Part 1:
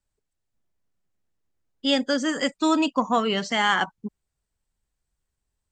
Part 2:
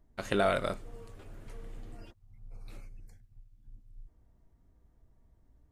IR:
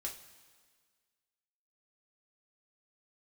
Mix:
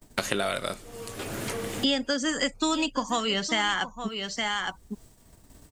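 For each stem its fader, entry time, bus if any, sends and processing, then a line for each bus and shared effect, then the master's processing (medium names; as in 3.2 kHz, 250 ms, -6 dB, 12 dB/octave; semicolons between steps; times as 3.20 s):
-5.0 dB, 0.00 s, no send, echo send -15.5 dB, none
-5.5 dB, 0.00 s, no send, no echo send, none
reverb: none
echo: delay 864 ms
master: expander -60 dBFS; treble shelf 2.7 kHz +9.5 dB; three bands compressed up and down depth 100%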